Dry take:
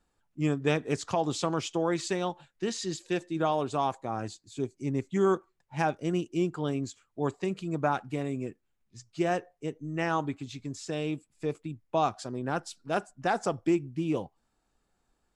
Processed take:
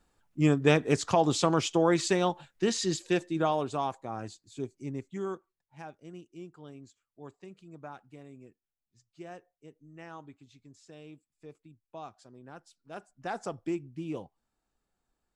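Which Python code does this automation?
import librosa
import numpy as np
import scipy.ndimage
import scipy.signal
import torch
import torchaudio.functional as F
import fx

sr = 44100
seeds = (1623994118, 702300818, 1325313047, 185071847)

y = fx.gain(x, sr, db=fx.line((2.98, 4.0), (3.95, -4.0), (4.72, -4.0), (5.8, -17.0), (12.77, -17.0), (13.35, -7.0)))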